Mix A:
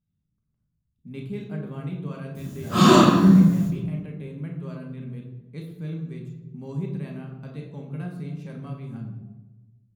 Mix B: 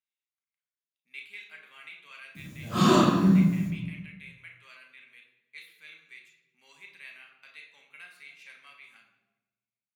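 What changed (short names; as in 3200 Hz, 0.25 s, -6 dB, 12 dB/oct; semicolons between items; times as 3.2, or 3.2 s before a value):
speech: add resonant high-pass 2200 Hz, resonance Q 3; background -6.0 dB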